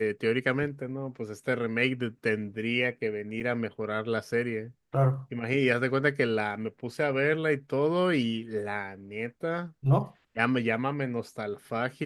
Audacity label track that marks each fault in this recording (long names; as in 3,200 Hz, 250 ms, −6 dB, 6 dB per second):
3.400000	3.410000	drop-out 6.2 ms